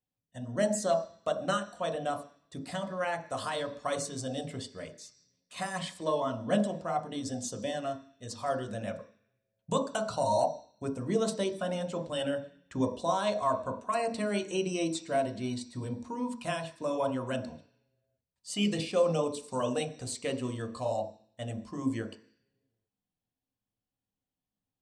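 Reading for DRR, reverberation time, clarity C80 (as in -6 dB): 4.0 dB, 0.50 s, 15.0 dB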